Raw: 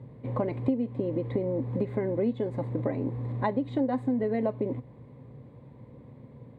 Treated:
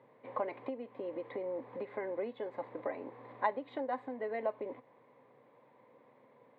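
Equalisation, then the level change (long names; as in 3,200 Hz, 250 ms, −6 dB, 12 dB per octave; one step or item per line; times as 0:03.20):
band-pass filter 710–2,800 Hz
0.0 dB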